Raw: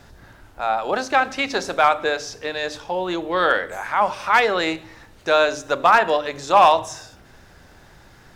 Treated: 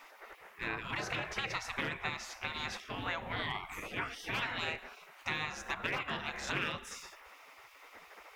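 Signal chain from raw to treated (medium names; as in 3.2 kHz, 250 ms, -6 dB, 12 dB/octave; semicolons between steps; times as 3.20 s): graphic EQ 125/250/500/2000/4000/8000 Hz +11/+11/+3/+9/-8/-7 dB; spectral gate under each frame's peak -20 dB weak; compression 4:1, threshold -34 dBFS, peak gain reduction 12 dB; loudspeaker Doppler distortion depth 0.15 ms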